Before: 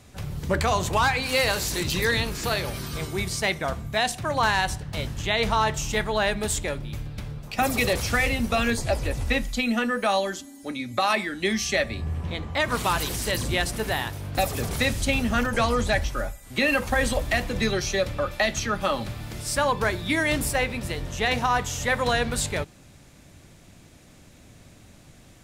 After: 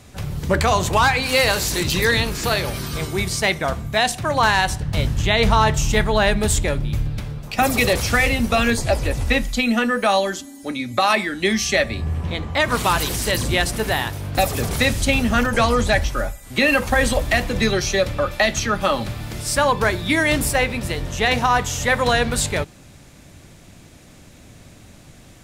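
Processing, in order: 4.80–7.18 s: bass shelf 180 Hz +7.5 dB; trim +5.5 dB

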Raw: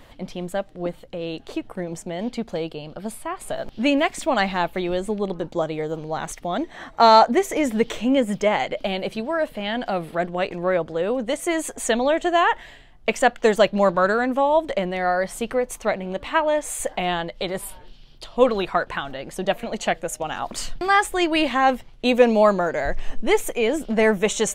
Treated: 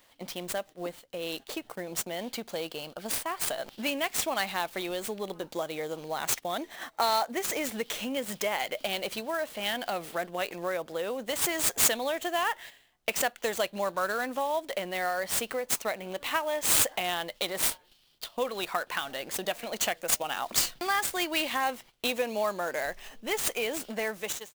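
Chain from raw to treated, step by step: fade out at the end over 0.86 s; gate -37 dBFS, range -11 dB; compression 2.5:1, threshold -27 dBFS, peak gain reduction 12.5 dB; RIAA curve recording; sampling jitter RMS 0.02 ms; trim -2 dB

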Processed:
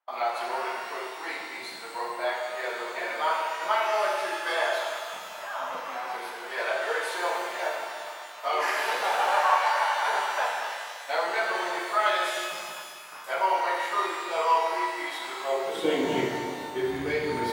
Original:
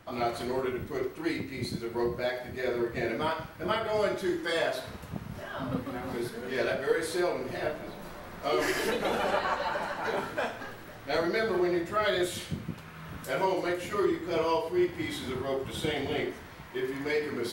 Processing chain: tone controls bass -1 dB, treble -4 dB; gate -42 dBFS, range -30 dB; high-pass sweep 850 Hz -> 65 Hz, 15.41–16.67 s; pitch-shifted reverb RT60 2.1 s, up +12 st, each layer -8 dB, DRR 1 dB

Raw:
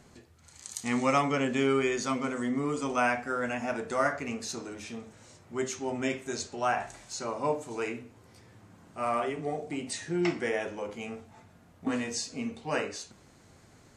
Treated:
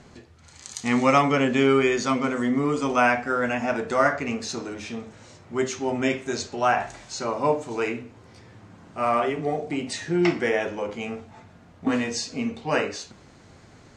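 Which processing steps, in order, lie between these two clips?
low-pass 6 kHz 12 dB/octave; trim +7 dB

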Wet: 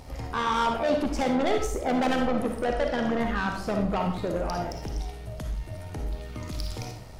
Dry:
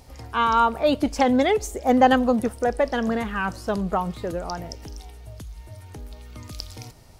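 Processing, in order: treble shelf 4.3 kHz -7.5 dB; in parallel at +2 dB: compression, threshold -34 dBFS, peak gain reduction 21 dB; on the sum: saturation -21 dBFS, distortion -8 dB; AM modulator 79 Hz, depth 35%; reverberation RT60 0.50 s, pre-delay 15 ms, DRR 2.5 dB

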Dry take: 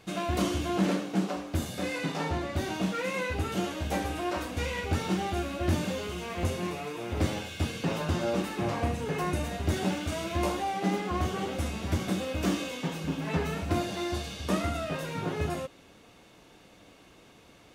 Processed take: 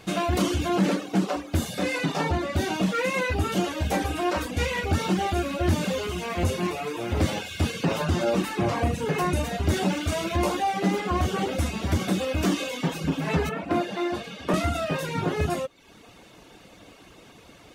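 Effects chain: 13.49–14.54 s: three-band isolator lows -22 dB, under 150 Hz, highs -12 dB, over 2.9 kHz; in parallel at +2.5 dB: peak limiter -22.5 dBFS, peak gain reduction 8 dB; on the sum: reverb removal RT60 0.65 s

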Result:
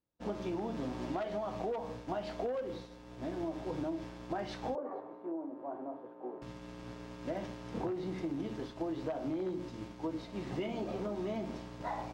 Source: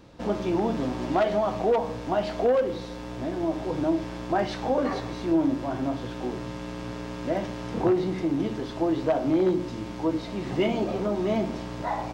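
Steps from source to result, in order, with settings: expander -29 dBFS; compression, threshold -27 dBFS, peak gain reduction 9 dB; 4.75–6.42 s: Butterworth band-pass 590 Hz, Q 0.84; trim -6.5 dB

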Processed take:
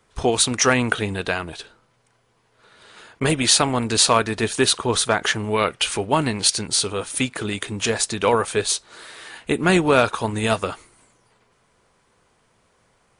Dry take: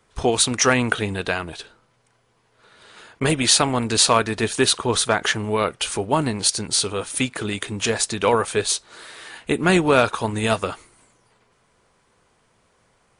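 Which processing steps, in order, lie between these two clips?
5.39–6.64 s: dynamic bell 2.5 kHz, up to +5 dB, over -38 dBFS, Q 0.91

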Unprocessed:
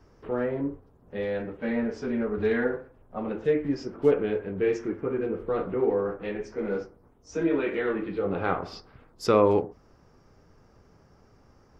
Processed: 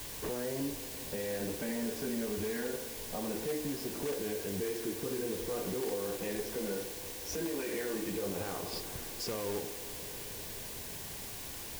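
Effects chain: in parallel at -8 dB: integer overflow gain 16 dB; on the sum: compression 4:1, threshold -37 dBFS, peak gain reduction 18 dB; peak limiter -33 dBFS, peak gain reduction 8.5 dB; word length cut 8-bit, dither triangular; band-stop 1.3 kHz, Q 5.5; on a send: feedback echo behind a band-pass 177 ms, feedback 82%, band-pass 570 Hz, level -15 dB; on the sum: trim +4 dB

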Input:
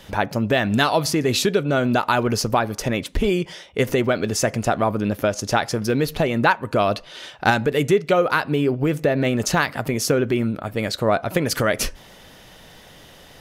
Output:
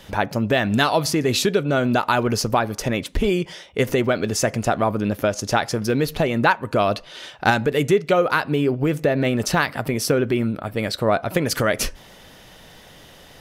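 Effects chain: 9.23–11.34 s: band-stop 6.7 kHz, Q 7.4

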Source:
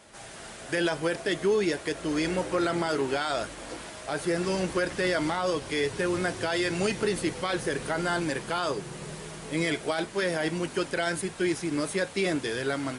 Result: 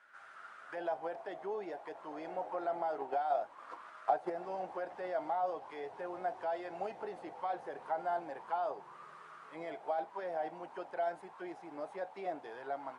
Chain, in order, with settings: 2.98–4.30 s: transient shaper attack +10 dB, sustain -3 dB; auto-wah 750–1500 Hz, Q 6.5, down, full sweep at -25 dBFS; trim +2.5 dB

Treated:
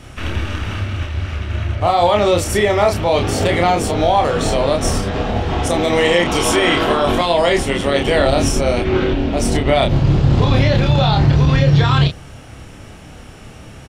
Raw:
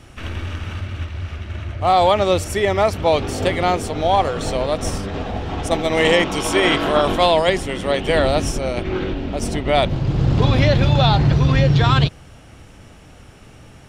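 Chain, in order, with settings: peak limiter -12 dBFS, peak gain reduction 10 dB; doubling 29 ms -4 dB; trim +5 dB

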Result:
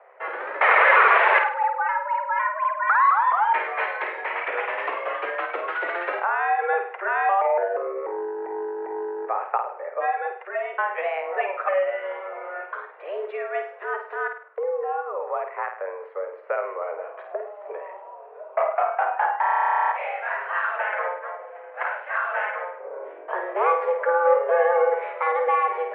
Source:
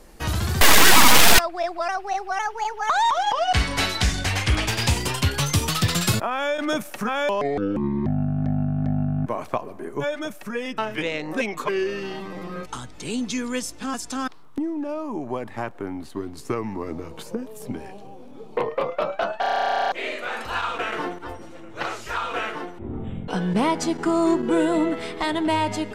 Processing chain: mistuned SSB +180 Hz 300–2000 Hz; flutter echo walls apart 8.8 m, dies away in 0.47 s; trim +1.5 dB

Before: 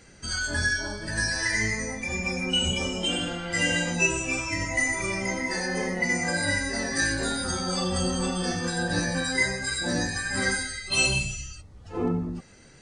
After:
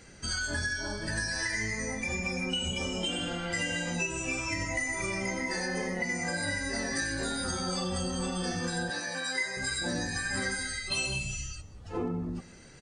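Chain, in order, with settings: compression, threshold -29 dBFS, peak gain reduction 11 dB; 8.90–9.57 s: frequency weighting A; delay 187 ms -21 dB

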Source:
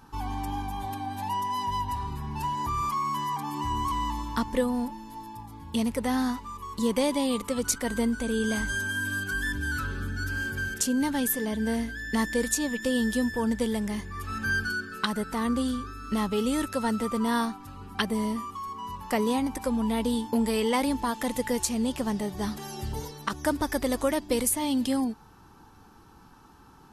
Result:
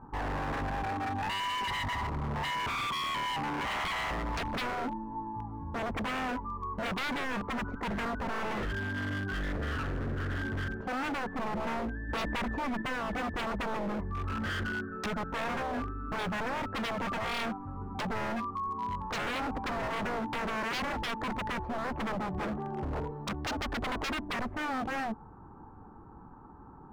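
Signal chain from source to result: low-pass 1.2 kHz 24 dB/octave; wavefolder -32 dBFS; 12.09–12.82 s: level flattener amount 70%; trim +3.5 dB

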